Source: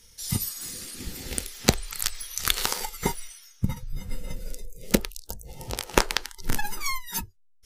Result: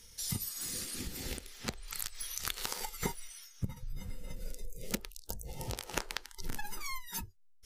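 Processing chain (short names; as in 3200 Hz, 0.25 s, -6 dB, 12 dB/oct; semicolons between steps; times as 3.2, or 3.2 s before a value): compressor 4:1, threshold -35 dBFS, peak gain reduction 18.5 dB; 1.37–1.88 high shelf 6100 Hz -7.5 dB; noise-modulated level, depth 60%; gain +2.5 dB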